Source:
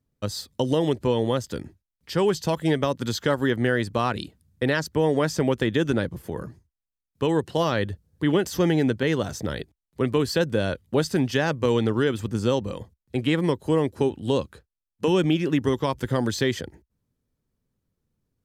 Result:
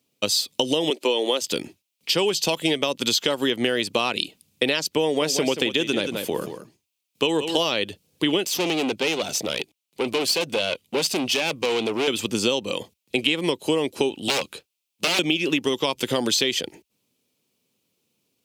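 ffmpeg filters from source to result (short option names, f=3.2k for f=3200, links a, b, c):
-filter_complex "[0:a]asettb=1/sr,asplit=3[a][b][c];[a]atrim=end=0.904[d];[b]atrim=start=0.9:end=1.42,asetpts=PTS-STARTPTS,afade=t=in:d=0.004:c=qsin,afade=t=out:st=0.516:d=0.004:c=qsin,highpass=f=280:w=0.5412,highpass=f=280:w=1.3066[e];[c]atrim=start=1.416[f];[d][e]acrossfade=d=0.004:c1=hsin:c2=qsin[g];[g][f]acrossfade=d=0.004:c1=qsin:c2=hsin,asettb=1/sr,asplit=3[h][i][j];[h]atrim=end=5.034[k];[i]atrim=start=5.03:end=7.69,asetpts=PTS-STARTPTS,afade=t=in:d=0.004:c=qsin,afade=t=out:st=2.656:d=0.004:c=qsin,aecho=1:1:180:0.299,atrim=end_sample=117306[l];[j]atrim=start=7.686[m];[k][l]acrossfade=d=0.004:c1=hsin:c2=qsin[n];[n][m]acrossfade=d=0.004:c1=qsin:c2=hsin,asettb=1/sr,asplit=3[o][p][q];[o]atrim=end=8.454[r];[p]atrim=start=8.45:end=12.08,asetpts=PTS-STARTPTS,afade=t=in:d=0.004:c=qsin,afade=t=out:st=3.626:d=0.004:c=qsin,aeval=exprs='(tanh(17.8*val(0)+0.65)-tanh(0.65))/17.8':c=same[s];[q]atrim=start=12.076[t];[r][s]acrossfade=d=0.004:c1=hsin:c2=qsin[u];[u][t]acrossfade=d=0.004:c1=qsin:c2=hsin,asettb=1/sr,asplit=3[v][w][x];[v]atrim=end=14.284[y];[w]atrim=start=14.28:end=15.19,asetpts=PTS-STARTPTS,afade=t=in:d=0.004:c=qsin,afade=t=out:st=0.906:d=0.004:c=qsin,aeval=exprs='0.0631*(abs(mod(val(0)/0.0631+3,4)-2)-1)':c=same[z];[x]atrim=start=15.186[aa];[y][z]acrossfade=d=0.004:c1=hsin:c2=qsin[ab];[ab][aa]acrossfade=d=0.004:c1=qsin:c2=hsin,highpass=280,highshelf=f=2.1k:t=q:w=3:g=6.5,acompressor=threshold=-27dB:ratio=6,volume=8.5dB"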